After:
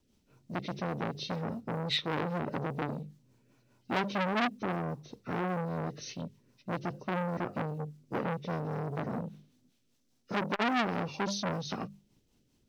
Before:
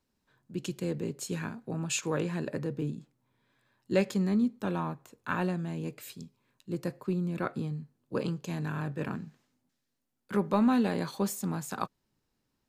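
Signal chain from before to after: nonlinear frequency compression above 1100 Hz 1.5:1; bell 1500 Hz -12 dB 1.9 oct; notches 50/100/150/200 Hz; in parallel at -0.5 dB: compressor 10:1, threshold -41 dBFS, peak gain reduction 19 dB; on the sum: companded quantiser 8-bit; rotary speaker horn 5 Hz; core saturation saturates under 2400 Hz; gain +5.5 dB

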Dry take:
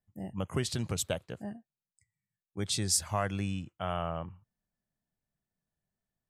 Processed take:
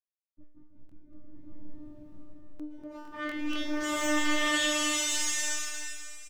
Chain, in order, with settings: self-modulated delay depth 0.66 ms; bit-crush 5-bit; high shelf 7200 Hz +8 dB; notch 680 Hz, Q 12; resonator 300 Hz, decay 0.55 s, harmonics all, mix 100%; low-pass sweep 160 Hz -> 6900 Hz, 2.37–3.86; high shelf 2500 Hz +9.5 dB; soft clip -34.5 dBFS, distortion -21 dB; robotiser 299 Hz; echo 0.322 s -8.5 dB; crackling interface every 0.24 s, samples 1024, repeat, from 0.87; bloom reverb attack 1.23 s, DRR -11.5 dB; gain +7.5 dB

